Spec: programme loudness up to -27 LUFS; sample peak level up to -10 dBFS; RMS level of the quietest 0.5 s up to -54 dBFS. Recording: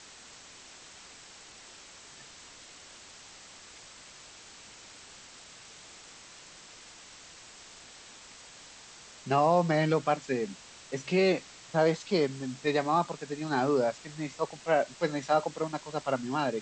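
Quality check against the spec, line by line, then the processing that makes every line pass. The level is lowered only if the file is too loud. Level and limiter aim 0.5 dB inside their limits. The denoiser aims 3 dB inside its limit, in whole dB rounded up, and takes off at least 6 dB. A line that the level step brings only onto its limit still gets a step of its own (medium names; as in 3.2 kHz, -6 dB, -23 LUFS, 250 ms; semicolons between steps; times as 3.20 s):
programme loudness -29.5 LUFS: pass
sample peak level -12.5 dBFS: pass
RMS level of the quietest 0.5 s -51 dBFS: fail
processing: noise reduction 6 dB, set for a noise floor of -51 dBFS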